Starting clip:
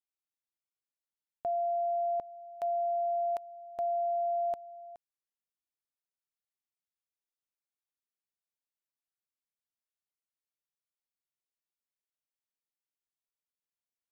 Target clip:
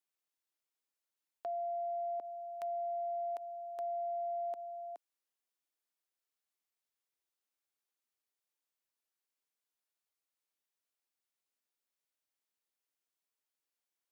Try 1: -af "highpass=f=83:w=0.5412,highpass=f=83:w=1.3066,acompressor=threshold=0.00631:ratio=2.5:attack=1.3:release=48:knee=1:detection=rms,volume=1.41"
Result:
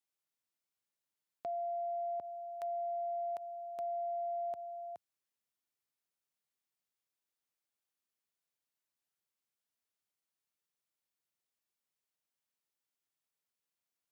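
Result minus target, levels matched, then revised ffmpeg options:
250 Hz band +4.5 dB
-af "highpass=f=260:w=0.5412,highpass=f=260:w=1.3066,acompressor=threshold=0.00631:ratio=2.5:attack=1.3:release=48:knee=1:detection=rms,volume=1.41"

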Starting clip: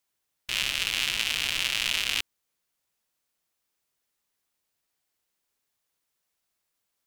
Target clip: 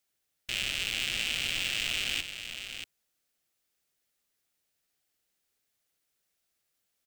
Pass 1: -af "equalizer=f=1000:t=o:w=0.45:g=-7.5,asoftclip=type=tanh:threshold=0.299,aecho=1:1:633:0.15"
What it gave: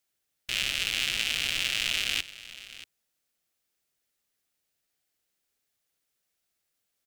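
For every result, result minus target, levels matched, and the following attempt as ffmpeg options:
saturation: distortion -11 dB; echo-to-direct -8 dB
-af "equalizer=f=1000:t=o:w=0.45:g=-7.5,asoftclip=type=tanh:threshold=0.106,aecho=1:1:633:0.15"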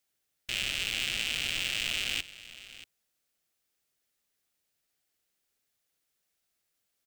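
echo-to-direct -8 dB
-af "equalizer=f=1000:t=o:w=0.45:g=-7.5,asoftclip=type=tanh:threshold=0.106,aecho=1:1:633:0.376"

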